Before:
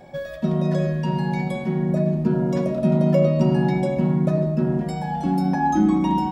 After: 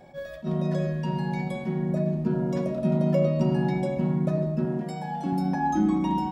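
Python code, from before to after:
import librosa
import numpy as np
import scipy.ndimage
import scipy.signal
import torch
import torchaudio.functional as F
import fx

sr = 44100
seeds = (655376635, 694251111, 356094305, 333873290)

y = fx.highpass(x, sr, hz=150.0, slope=12, at=(4.65, 5.33))
y = fx.attack_slew(y, sr, db_per_s=290.0)
y = y * 10.0 ** (-5.0 / 20.0)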